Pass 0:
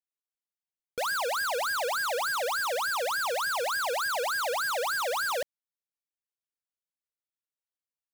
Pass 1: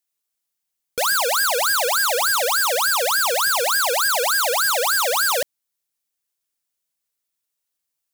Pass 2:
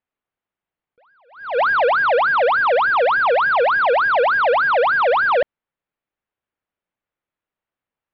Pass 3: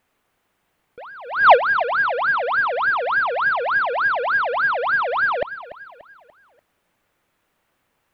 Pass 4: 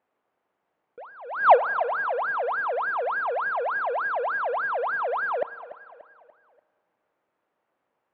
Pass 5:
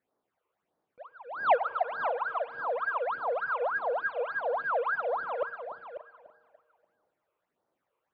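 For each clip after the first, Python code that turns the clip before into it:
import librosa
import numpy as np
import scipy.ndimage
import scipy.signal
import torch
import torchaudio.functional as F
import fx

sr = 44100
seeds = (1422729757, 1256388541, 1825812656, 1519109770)

y1 = fx.high_shelf(x, sr, hz=4200.0, db=9.5)
y1 = y1 * 10.0 ** (7.5 / 20.0)
y2 = scipy.ndimage.gaussian_filter1d(y1, 3.8, mode='constant')
y2 = fx.attack_slew(y2, sr, db_per_s=120.0)
y2 = y2 * 10.0 ** (7.5 / 20.0)
y3 = fx.over_compress(y2, sr, threshold_db=-24.0, ratio=-0.5)
y3 = fx.echo_feedback(y3, sr, ms=291, feedback_pct=44, wet_db=-15.0)
y3 = y3 * 10.0 ** (8.0 / 20.0)
y4 = fx.bandpass_q(y3, sr, hz=600.0, q=0.8)
y4 = fx.rev_spring(y4, sr, rt60_s=2.4, pass_ms=(34,), chirp_ms=35, drr_db=19.0)
y4 = y4 * 10.0 ** (-3.0 / 20.0)
y5 = fx.phaser_stages(y4, sr, stages=8, low_hz=210.0, high_hz=2700.0, hz=1.6, feedback_pct=25)
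y5 = y5 + 10.0 ** (-10.0 / 20.0) * np.pad(y5, (int(543 * sr / 1000.0), 0))[:len(y5)]
y5 = y5 * 10.0 ** (-2.0 / 20.0)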